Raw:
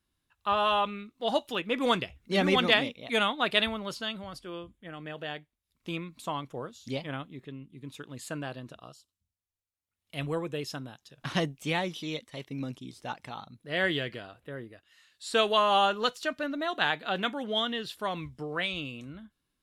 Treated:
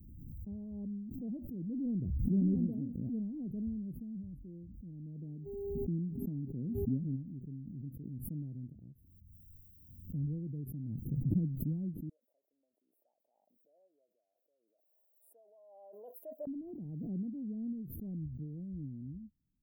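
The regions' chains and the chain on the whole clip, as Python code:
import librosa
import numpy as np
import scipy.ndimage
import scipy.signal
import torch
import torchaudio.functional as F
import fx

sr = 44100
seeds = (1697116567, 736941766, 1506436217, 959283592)

y = fx.peak_eq(x, sr, hz=250.0, db=7.0, octaves=1.3, at=(5.2, 7.15), fade=0.02)
y = fx.dmg_buzz(y, sr, base_hz=400.0, harmonics=6, level_db=-53.0, tilt_db=-2, odd_only=False, at=(5.2, 7.15), fade=0.02)
y = fx.chain(y, sr, fx.cheby1_highpass(hz=620.0, order=5),
    fx.tilt_eq(slope=-3.0), at=(12.09, 16.47))
y = scipy.signal.sosfilt(scipy.signal.cheby2(4, 80, [1200.0, 6800.0], 'bandstop', fs=sr, output='sos'), y)
y = fx.pre_swell(y, sr, db_per_s=25.0)
y = y * 10.0 ** (1.0 / 20.0)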